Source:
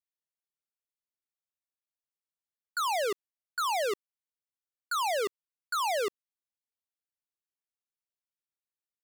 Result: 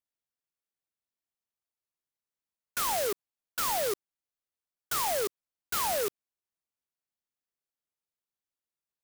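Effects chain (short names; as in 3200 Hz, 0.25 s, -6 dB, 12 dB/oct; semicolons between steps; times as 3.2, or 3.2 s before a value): clock jitter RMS 0.12 ms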